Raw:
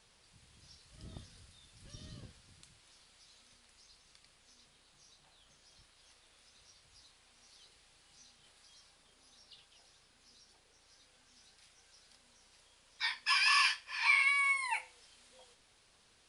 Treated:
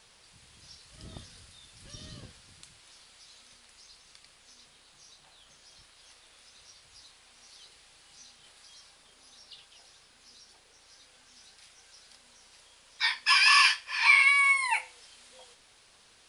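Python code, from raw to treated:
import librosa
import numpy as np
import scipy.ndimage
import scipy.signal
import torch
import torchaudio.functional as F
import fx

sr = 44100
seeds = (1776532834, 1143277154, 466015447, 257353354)

y = fx.low_shelf(x, sr, hz=370.0, db=-5.5)
y = y * 10.0 ** (8.0 / 20.0)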